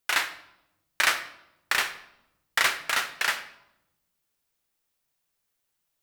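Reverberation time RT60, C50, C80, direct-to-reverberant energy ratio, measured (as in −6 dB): 0.85 s, 12.0 dB, 14.5 dB, 8.0 dB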